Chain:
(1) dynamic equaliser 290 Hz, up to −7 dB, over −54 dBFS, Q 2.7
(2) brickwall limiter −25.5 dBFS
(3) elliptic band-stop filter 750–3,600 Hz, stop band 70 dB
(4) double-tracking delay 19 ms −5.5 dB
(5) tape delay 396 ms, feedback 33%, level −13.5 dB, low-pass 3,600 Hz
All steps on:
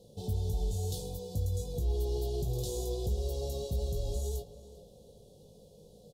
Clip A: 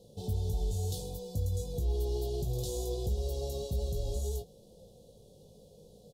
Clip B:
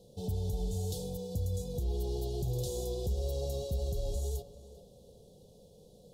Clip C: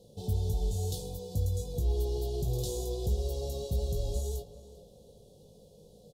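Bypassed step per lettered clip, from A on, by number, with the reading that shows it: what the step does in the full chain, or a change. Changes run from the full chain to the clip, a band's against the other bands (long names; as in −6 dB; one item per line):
5, echo-to-direct ratio −31.0 dB to none audible
4, 250 Hz band +2.5 dB
2, change in integrated loudness +1.5 LU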